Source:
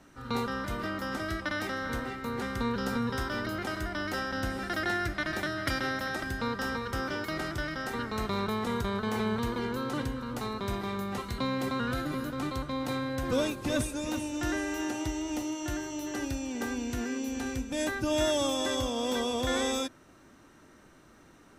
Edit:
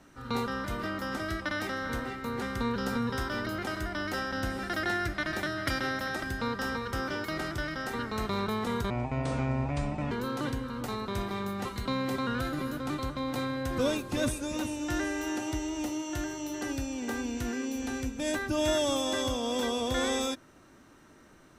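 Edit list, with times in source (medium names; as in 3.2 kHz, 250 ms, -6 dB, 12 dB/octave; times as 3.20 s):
8.90–9.64 s: speed 61%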